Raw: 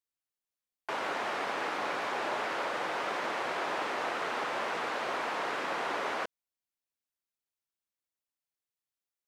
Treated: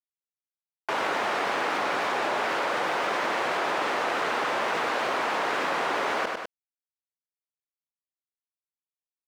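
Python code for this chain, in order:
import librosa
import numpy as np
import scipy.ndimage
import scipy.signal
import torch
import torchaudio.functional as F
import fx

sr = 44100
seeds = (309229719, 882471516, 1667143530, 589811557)

p1 = np.where(np.abs(x) >= 10.0 ** (-54.5 / 20.0), x, 0.0)
p2 = p1 + fx.echo_feedback(p1, sr, ms=100, feedback_pct=16, wet_db=-13, dry=0)
p3 = fx.env_flatten(p2, sr, amount_pct=70)
y = p3 * librosa.db_to_amplitude(5.0)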